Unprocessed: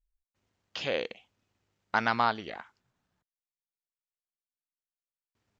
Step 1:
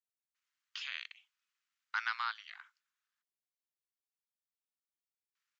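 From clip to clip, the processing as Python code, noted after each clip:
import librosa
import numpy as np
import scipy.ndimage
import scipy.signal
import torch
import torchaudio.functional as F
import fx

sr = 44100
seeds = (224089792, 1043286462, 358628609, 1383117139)

y = scipy.signal.sosfilt(scipy.signal.butter(6, 1200.0, 'highpass', fs=sr, output='sos'), x)
y = F.gain(torch.from_numpy(y), -5.5).numpy()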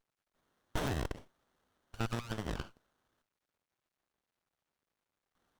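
y = np.minimum(x, 2.0 * 10.0 ** (-35.5 / 20.0) - x)
y = fx.over_compress(y, sr, threshold_db=-43.0, ratio=-0.5)
y = fx.running_max(y, sr, window=17)
y = F.gain(torch.from_numpy(y), 10.5).numpy()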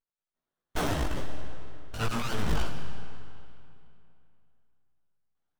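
y = fx.leveller(x, sr, passes=5)
y = fx.chorus_voices(y, sr, voices=4, hz=0.61, base_ms=17, depth_ms=4.1, mix_pct=45)
y = fx.rev_freeverb(y, sr, rt60_s=2.7, hf_ratio=0.85, predelay_ms=75, drr_db=8.0)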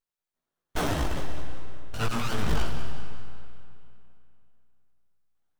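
y = fx.echo_feedback(x, sr, ms=194, feedback_pct=42, wet_db=-12)
y = F.gain(torch.from_numpy(y), 1.5).numpy()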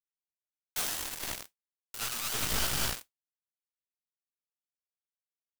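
y = scipy.signal.lfilter([1.0, -0.9], [1.0], x)
y = fx.quant_dither(y, sr, seeds[0], bits=6, dither='none')
y = fx.mod_noise(y, sr, seeds[1], snr_db=10)
y = F.gain(torch.from_numpy(y), 5.5).numpy()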